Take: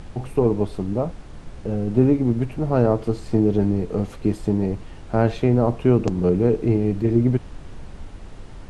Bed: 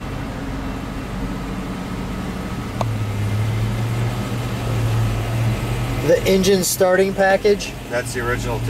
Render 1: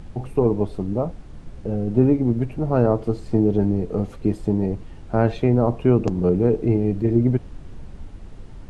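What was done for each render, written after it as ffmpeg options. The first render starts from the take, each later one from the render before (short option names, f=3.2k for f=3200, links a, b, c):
-af "afftdn=nr=6:nf=-40"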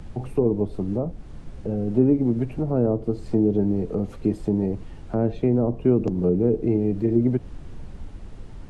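-filter_complex "[0:a]acrossover=split=160|540[a][b][c];[a]alimiter=level_in=3dB:limit=-24dB:level=0:latency=1,volume=-3dB[d];[c]acompressor=threshold=-39dB:ratio=6[e];[d][b][e]amix=inputs=3:normalize=0"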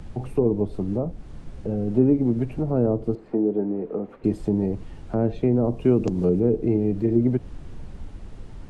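-filter_complex "[0:a]asettb=1/sr,asplit=3[a][b][c];[a]atrim=end=3.154[d];[b]atrim=start=3.15:end=4.24,asetpts=PTS-STARTPTS,afade=t=in:d=0.004:c=qsin,afade=t=out:st=1.086:d=0.004:c=qsin,acrossover=split=210 2400:gain=0.0794 1 0.0708[e][f][g];[e][f][g]amix=inputs=3:normalize=0[h];[c]atrim=start=4.236[i];[d][h]acrossfade=d=0.004:c1=hsin:c2=qsin[j];[j][i]acrossfade=d=0.004:c1=qsin:c2=hsin,asettb=1/sr,asplit=3[k][l][m];[k]atrim=end=5.644[n];[l]atrim=start=5.64:end=6.4,asetpts=PTS-STARTPTS,afade=t=in:d=0.004:c=qsin,afade=t=out:st=0.756:d=0.004:c=qsin,highshelf=f=2.4k:g=10[o];[m]atrim=start=6.396[p];[n][o]acrossfade=d=0.004:c1=hsin:c2=qsin[q];[q][p]acrossfade=d=0.004:c1=qsin:c2=hsin"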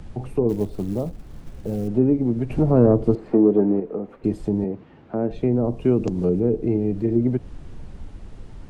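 -filter_complex "[0:a]asettb=1/sr,asplit=3[a][b][c];[a]atrim=end=0.494[d];[b]atrim=start=0.49:end=1.88,asetpts=PTS-STARTPTS,afade=t=in:d=0.004:c=qsin,afade=t=out:st=1.386:d=0.004:c=qsin,acrusher=bits=7:mode=log:mix=0:aa=0.000001[e];[c]atrim=start=1.876[f];[d][e]acrossfade=d=0.004:c1=hsin:c2=qsin[g];[g][f]acrossfade=d=0.004:c1=qsin:c2=hsin,asettb=1/sr,asplit=3[h][i][j];[h]atrim=end=2.504[k];[i]atrim=start=2.5:end=3.8,asetpts=PTS-STARTPTS,afade=t=in:d=0.004:c=qsin,afade=t=out:st=1.296:d=0.004:c=qsin,acontrast=79[l];[j]atrim=start=3.796[m];[k][l]acrossfade=d=0.004:c1=hsin:c2=qsin[n];[n][m]acrossfade=d=0.004:c1=qsin:c2=hsin,asettb=1/sr,asplit=3[o][p][q];[o]atrim=end=4.644[r];[p]atrim=start=4.64:end=5.31,asetpts=PTS-STARTPTS,afade=t=in:d=0.004:c=qsin,afade=t=out:st=0.666:d=0.004:c=qsin,highpass=170,lowpass=2.5k[s];[q]atrim=start=5.306[t];[r][s]acrossfade=d=0.004:c1=hsin:c2=qsin[u];[u][t]acrossfade=d=0.004:c1=qsin:c2=hsin"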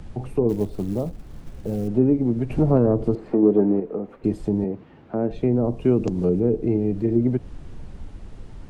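-filter_complex "[0:a]asettb=1/sr,asplit=3[a][b][c];[a]atrim=end=2.774[d];[b]atrim=start=2.77:end=3.43,asetpts=PTS-STARTPTS,afade=t=in:d=0.004:c=qsin,afade=t=out:st=0.656:d=0.004:c=qsin,acompressor=threshold=-19dB:ratio=1.5:attack=3.2:release=140:knee=1:detection=peak[e];[c]atrim=start=3.426[f];[d][e]acrossfade=d=0.004:c1=hsin:c2=qsin[g];[g][f]acrossfade=d=0.004:c1=qsin:c2=hsin"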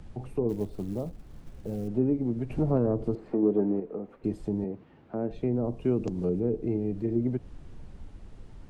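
-af "volume=-7.5dB"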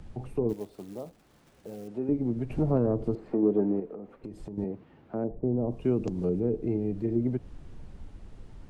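-filter_complex "[0:a]asettb=1/sr,asplit=3[a][b][c];[a]atrim=end=0.534[d];[b]atrim=start=0.53:end=2.09,asetpts=PTS-STARTPTS,afade=t=in:d=0.004:c=qsin,afade=t=out:st=1.556:d=0.004:c=qsin,highpass=f=590:p=1[e];[c]atrim=start=2.086[f];[d][e]acrossfade=d=0.004:c1=hsin:c2=qsin[g];[g][f]acrossfade=d=0.004:c1=qsin:c2=hsin,asettb=1/sr,asplit=3[h][i][j];[h]atrim=end=3.904[k];[i]atrim=start=3.9:end=4.58,asetpts=PTS-STARTPTS,afade=t=in:d=0.004:c=qsin,afade=t=out:st=0.676:d=0.004:c=qsin,acompressor=threshold=-36dB:ratio=6:attack=3.2:release=140:knee=1:detection=peak[l];[j]atrim=start=4.576[m];[k][l]acrossfade=d=0.004:c1=hsin:c2=qsin[n];[n][m]acrossfade=d=0.004:c1=qsin:c2=hsin,asettb=1/sr,asplit=3[o][p][q];[o]atrim=end=5.244[r];[p]atrim=start=5.24:end=5.71,asetpts=PTS-STARTPTS,afade=t=in:d=0.004:c=qsin,afade=t=out:st=0.466:d=0.004:c=qsin,lowpass=f=1k:w=0.5412,lowpass=f=1k:w=1.3066[s];[q]atrim=start=5.706[t];[r][s]acrossfade=d=0.004:c1=hsin:c2=qsin[u];[u][t]acrossfade=d=0.004:c1=qsin:c2=hsin"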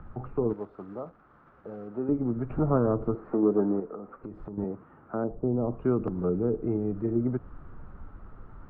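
-af "lowpass=f=1.3k:t=q:w=5.5"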